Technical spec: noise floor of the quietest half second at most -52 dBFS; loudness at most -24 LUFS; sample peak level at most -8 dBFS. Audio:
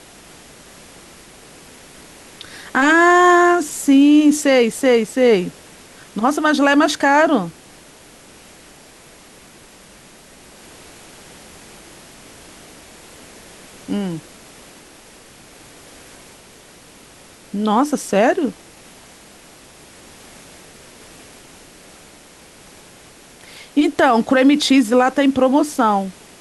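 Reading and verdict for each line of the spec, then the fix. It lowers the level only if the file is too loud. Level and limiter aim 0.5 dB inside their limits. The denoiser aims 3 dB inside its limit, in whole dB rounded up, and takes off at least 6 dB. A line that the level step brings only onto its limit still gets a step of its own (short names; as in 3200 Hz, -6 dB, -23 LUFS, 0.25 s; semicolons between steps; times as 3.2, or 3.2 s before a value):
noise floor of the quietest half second -44 dBFS: fail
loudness -15.0 LUFS: fail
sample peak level -4.5 dBFS: fail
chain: gain -9.5 dB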